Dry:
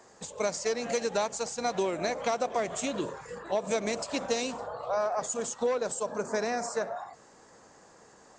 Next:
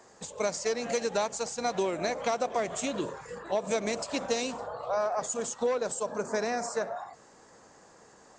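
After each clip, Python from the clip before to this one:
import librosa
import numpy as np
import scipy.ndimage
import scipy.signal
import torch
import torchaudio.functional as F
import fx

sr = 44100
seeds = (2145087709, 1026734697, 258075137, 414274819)

y = x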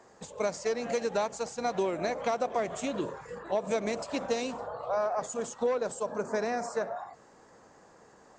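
y = fx.high_shelf(x, sr, hz=3300.0, db=-8.0)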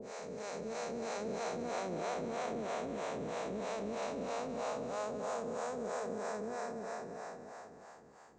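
y = fx.spec_blur(x, sr, span_ms=1440.0)
y = fx.harmonic_tremolo(y, sr, hz=3.1, depth_pct=100, crossover_hz=490.0)
y = y + 10.0 ** (-12.5 / 20.0) * np.pad(y, (int(187 * sr / 1000.0), 0))[:len(y)]
y = F.gain(torch.from_numpy(y), 3.5).numpy()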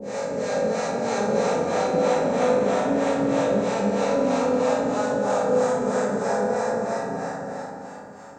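y = fx.rev_fdn(x, sr, rt60_s=1.2, lf_ratio=1.55, hf_ratio=0.5, size_ms=11.0, drr_db=-6.5)
y = F.gain(torch.from_numpy(y), 7.5).numpy()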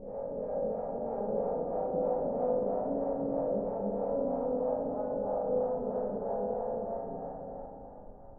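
y = fx.dmg_noise_colour(x, sr, seeds[0], colour='brown', level_db=-40.0)
y = fx.ladder_lowpass(y, sr, hz=860.0, resonance_pct=35)
y = F.gain(torch.from_numpy(y), -5.0).numpy()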